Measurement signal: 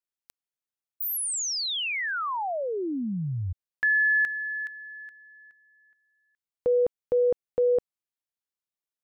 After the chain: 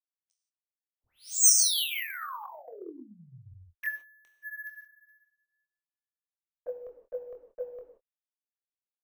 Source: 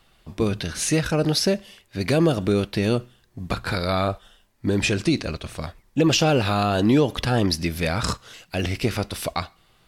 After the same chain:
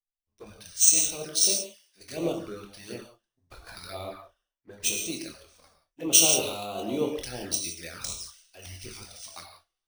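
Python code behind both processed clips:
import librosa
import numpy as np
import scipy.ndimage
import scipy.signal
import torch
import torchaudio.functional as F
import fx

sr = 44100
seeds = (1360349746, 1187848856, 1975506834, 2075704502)

y = fx.lowpass_res(x, sr, hz=6000.0, q=7.1)
y = fx.peak_eq(y, sr, hz=110.0, db=-14.0, octaves=2.7)
y = fx.rev_gated(y, sr, seeds[0], gate_ms=200, shape='flat', drr_db=1.0)
y = fx.env_flanger(y, sr, rest_ms=11.4, full_db=-18.0)
y = fx.doubler(y, sr, ms=24.0, db=-9.0)
y = np.repeat(y[::3], 3)[:len(y)]
y = fx.band_widen(y, sr, depth_pct=100)
y = F.gain(torch.from_numpy(y), -11.5).numpy()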